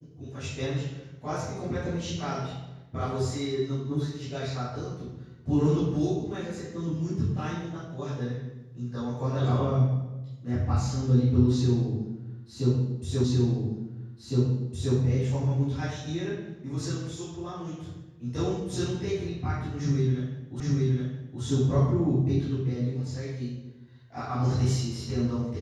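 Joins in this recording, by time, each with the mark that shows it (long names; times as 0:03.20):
0:13.24: the same again, the last 1.71 s
0:20.60: the same again, the last 0.82 s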